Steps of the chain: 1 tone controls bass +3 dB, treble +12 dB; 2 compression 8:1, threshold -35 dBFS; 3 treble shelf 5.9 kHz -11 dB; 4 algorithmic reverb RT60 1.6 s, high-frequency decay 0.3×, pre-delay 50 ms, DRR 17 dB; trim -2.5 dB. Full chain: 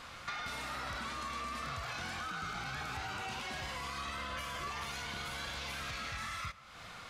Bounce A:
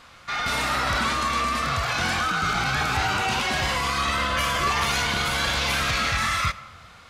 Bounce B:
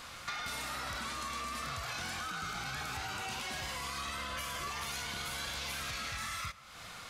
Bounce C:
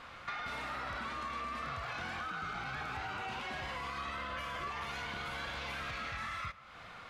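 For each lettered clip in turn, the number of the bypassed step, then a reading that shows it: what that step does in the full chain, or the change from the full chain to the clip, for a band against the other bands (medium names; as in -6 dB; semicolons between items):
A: 2, mean gain reduction 15.0 dB; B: 3, 8 kHz band +6.5 dB; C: 1, 8 kHz band -9.0 dB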